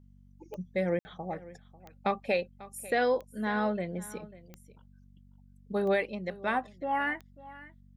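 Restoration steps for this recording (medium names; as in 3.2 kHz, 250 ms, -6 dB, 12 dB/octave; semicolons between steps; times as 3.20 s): de-click; de-hum 47.8 Hz, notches 5; room tone fill 0.99–1.05 s; inverse comb 544 ms -18.5 dB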